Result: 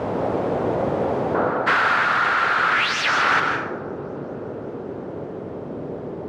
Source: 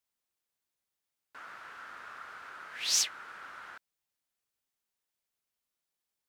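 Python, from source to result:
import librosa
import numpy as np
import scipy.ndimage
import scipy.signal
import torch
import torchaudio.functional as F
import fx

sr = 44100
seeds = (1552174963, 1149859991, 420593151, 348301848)

y = x + 0.5 * 10.0 ** (-31.5 / 20.0) * np.sign(x)
y = fx.peak_eq(y, sr, hz=520.0, db=4.0, octaves=2.4)
y = fx.echo_heads(y, sr, ms=191, heads='first and third', feedback_pct=71, wet_db=-12.5)
y = fx.leveller(y, sr, passes=5)
y = fx.cheby1_bandpass(y, sr, low_hz=110.0, high_hz=fx.steps((0.0, 600.0), (1.66, 2400.0), (3.39, 440.0)), order=2)
y = fx.rev_plate(y, sr, seeds[0], rt60_s=0.69, hf_ratio=0.75, predelay_ms=115, drr_db=5.0)
y = fx.rider(y, sr, range_db=10, speed_s=0.5)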